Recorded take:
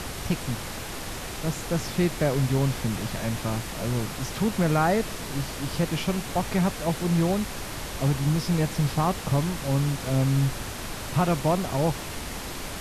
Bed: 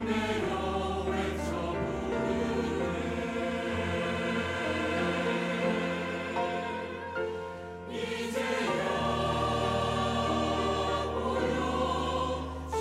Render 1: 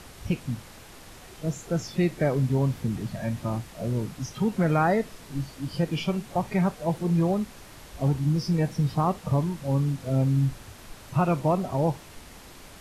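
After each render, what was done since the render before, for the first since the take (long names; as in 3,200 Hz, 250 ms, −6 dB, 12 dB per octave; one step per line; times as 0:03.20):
noise reduction from a noise print 12 dB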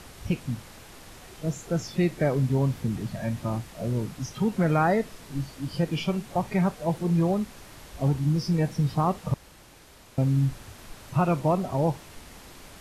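0:09.34–0:10.18: fill with room tone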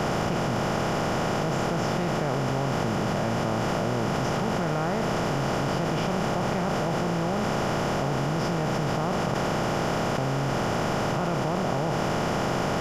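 compressor on every frequency bin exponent 0.2
output level in coarse steps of 13 dB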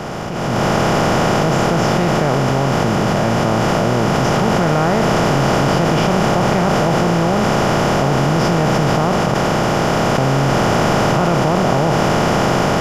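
automatic gain control gain up to 13 dB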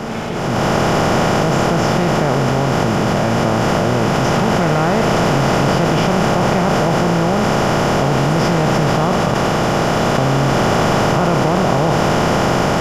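mix in bed +1.5 dB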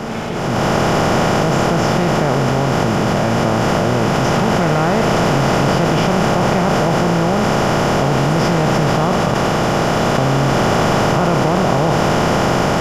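no processing that can be heard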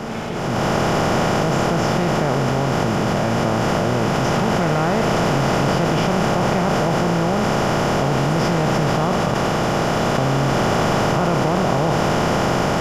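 level −3.5 dB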